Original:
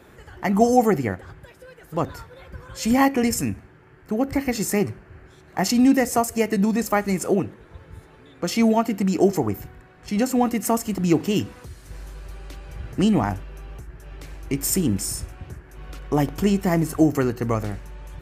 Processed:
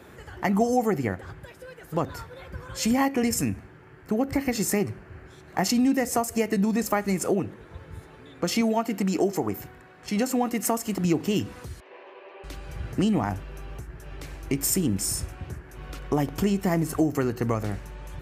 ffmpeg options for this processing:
ffmpeg -i in.wav -filter_complex "[0:a]asettb=1/sr,asplit=3[link_01][link_02][link_03];[link_01]atrim=end=8.614[link_04];[link_02]atrim=start=8.61:end=11.05,asetpts=PTS-STARTPTS,afade=type=in:duration=0.004:curve=qsin,afade=type=out:start_time=2.436:duration=0.004:curve=qsin,lowshelf=frequency=140:gain=-10[link_05];[link_03]atrim=start=11.046[link_06];[link_04][link_05]acrossfade=duration=0.004:curve1=hsin:curve2=qsin[link_07];[link_07][link_06]acrossfade=duration=0.004:curve1=qsin:curve2=hsin,asettb=1/sr,asplit=3[link_08][link_09][link_10];[link_08]atrim=end=11.804[link_11];[link_09]atrim=start=11.8:end=12.44,asetpts=PTS-STARTPTS,afade=type=in:duration=0.004:curve=qsin,afade=type=out:start_time=0.636:duration=0.004:curve=qsin,highpass=frequency=390:width=0.5412,highpass=frequency=390:width=1.3066,equalizer=frequency=390:width_type=q:width=4:gain=6,equalizer=frequency=580:width_type=q:width=4:gain=5,equalizer=frequency=1000:width_type=q:width=4:gain=6,equalizer=frequency=1400:width_type=q:width=4:gain=-8,equalizer=frequency=2700:width_type=q:width=4:gain=5,lowpass=frequency=2800:width=0.5412,lowpass=frequency=2800:width=1.3066[link_12];[link_10]atrim=start=12.436[link_13];[link_11][link_12]acrossfade=duration=0.004:curve1=hsin:curve2=qsin[link_14];[link_14][link_13]acrossfade=duration=0.004:curve1=qsin:curve2=hsin,highpass=51,acompressor=threshold=-24dB:ratio=2.5,volume=1.5dB" out.wav

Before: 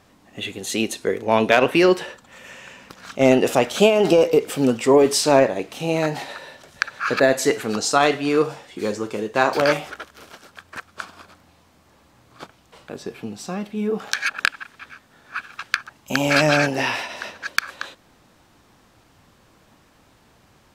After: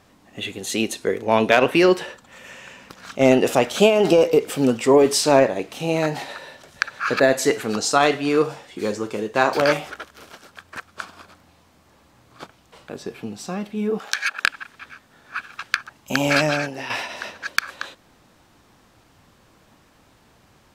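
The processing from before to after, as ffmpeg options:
ffmpeg -i in.wav -filter_complex "[0:a]asettb=1/sr,asplit=3[link_01][link_02][link_03];[link_01]atrim=end=13.994[link_04];[link_02]atrim=start=13.99:end=14.45,asetpts=PTS-STARTPTS,afade=type=in:duration=0.004:curve=qsin,afade=type=out:start_time=0.456:duration=0.004:curve=qsin,highpass=frequency=520:poles=1[link_05];[link_03]atrim=start=14.446[link_06];[link_04][link_05]acrossfade=duration=0.004:curve1=hsin:curve2=qsin[link_07];[link_07][link_06]acrossfade=duration=0.004:curve1=qsin:curve2=hsin,asplit=2[link_08][link_09];[link_08]atrim=end=16.9,asetpts=PTS-STARTPTS,afade=type=out:start_time=16.31:duration=0.59:curve=qua:silence=0.316228[link_10];[link_09]atrim=start=16.9,asetpts=PTS-STARTPTS,afade=type=in:duration=0.004:curve=hsin:silence=0.316228[link_11];[link_10][link_11]concat=n=2:v=0:a=1" out.wav

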